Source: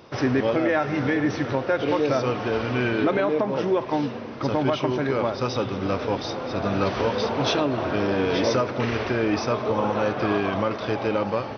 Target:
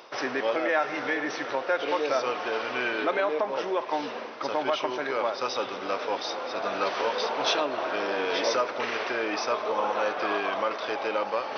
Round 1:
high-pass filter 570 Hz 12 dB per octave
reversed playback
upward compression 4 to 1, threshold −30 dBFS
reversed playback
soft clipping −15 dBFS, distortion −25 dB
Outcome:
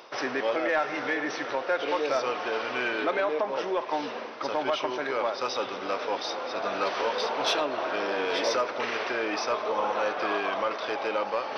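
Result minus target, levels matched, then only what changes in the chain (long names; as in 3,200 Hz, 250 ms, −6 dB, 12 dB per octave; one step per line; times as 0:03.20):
soft clipping: distortion +21 dB
change: soft clipping −3.5 dBFS, distortion −46 dB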